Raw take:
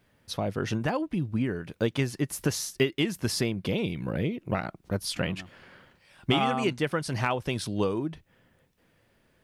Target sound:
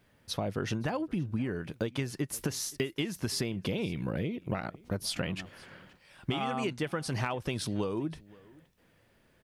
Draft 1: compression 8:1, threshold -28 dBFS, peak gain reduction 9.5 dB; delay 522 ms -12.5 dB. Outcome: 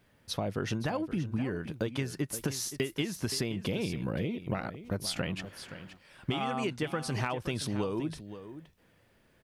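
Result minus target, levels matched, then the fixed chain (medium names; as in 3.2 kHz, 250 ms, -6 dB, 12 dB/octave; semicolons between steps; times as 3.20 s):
echo-to-direct +11 dB
compression 8:1, threshold -28 dBFS, peak gain reduction 9.5 dB; delay 522 ms -23.5 dB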